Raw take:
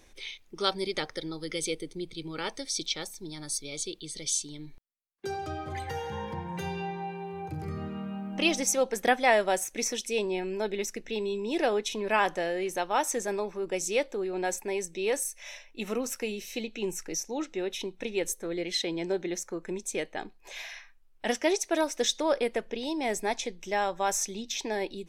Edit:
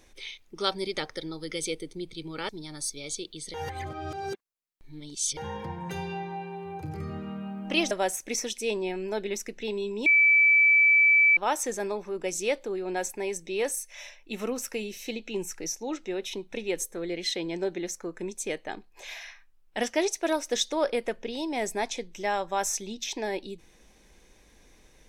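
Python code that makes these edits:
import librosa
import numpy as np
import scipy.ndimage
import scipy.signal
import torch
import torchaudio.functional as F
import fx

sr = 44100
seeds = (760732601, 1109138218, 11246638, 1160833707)

y = fx.edit(x, sr, fx.cut(start_s=2.49, length_s=0.68),
    fx.reverse_span(start_s=4.22, length_s=1.83),
    fx.cut(start_s=8.59, length_s=0.8),
    fx.bleep(start_s=11.54, length_s=1.31, hz=2310.0, db=-16.0), tone=tone)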